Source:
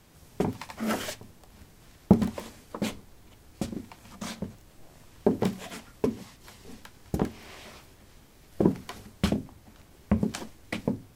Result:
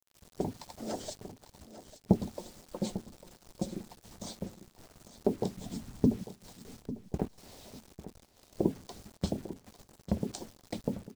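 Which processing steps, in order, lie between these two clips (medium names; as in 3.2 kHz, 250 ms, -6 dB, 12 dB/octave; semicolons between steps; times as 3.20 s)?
steep low-pass 9.1 kHz 96 dB/octave; high-order bell 1.8 kHz -15 dB; harmonic-percussive split harmonic -11 dB; 2.39–3.91 s: comb 5.6 ms, depth 58%; 5.57–6.24 s: resonant low shelf 330 Hz +11 dB, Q 1.5; in parallel at -2 dB: compression, threshold -37 dBFS, peak gain reduction 22.5 dB; on the sum: word length cut 8-bit, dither none; 6.82–7.38 s: hysteresis with a dead band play -31.5 dBFS; on a send: feedback delay 848 ms, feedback 22%, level -14 dB; on the sum: trim -5.5 dB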